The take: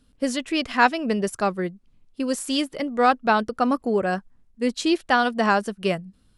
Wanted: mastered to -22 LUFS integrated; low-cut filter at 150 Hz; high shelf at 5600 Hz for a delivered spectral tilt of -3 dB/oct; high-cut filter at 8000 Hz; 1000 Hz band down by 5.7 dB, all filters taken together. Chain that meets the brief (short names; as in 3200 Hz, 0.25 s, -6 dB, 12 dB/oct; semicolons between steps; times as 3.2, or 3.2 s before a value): HPF 150 Hz; LPF 8000 Hz; bell 1000 Hz -8 dB; high shelf 5600 Hz -3.5 dB; gain +4 dB